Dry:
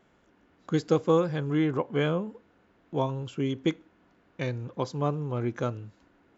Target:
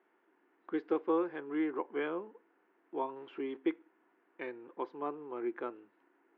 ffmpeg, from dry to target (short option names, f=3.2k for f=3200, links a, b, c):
-filter_complex "[0:a]asettb=1/sr,asplit=3[a][b][c];[a]atrim=end=3.164[d];[b]atrim=start=3.16:end=3.57,asetpts=PTS-STARTPTS,afade=t=in:d=0.004:c=qsin,afade=t=out:st=0.406:d=0.004:c=qsin,aeval=exprs='val(0)+0.5*0.00708*sgn(val(0))':c=same[e];[c]atrim=start=3.566[f];[d][e]acrossfade=d=0.004:c1=hsin:c2=qsin[g];[g][f]acrossfade=d=0.004:c1=qsin:c2=hsin,highpass=f=310:w=0.5412,highpass=f=310:w=1.3066,equalizer=f=350:t=q:w=4:g=7,equalizer=f=570:t=q:w=4:g=-7,equalizer=f=930:t=q:w=4:g=4,equalizer=f=1.8k:t=q:w=4:g=3,lowpass=f=2.6k:w=0.5412,lowpass=f=2.6k:w=1.3066,volume=-7.5dB"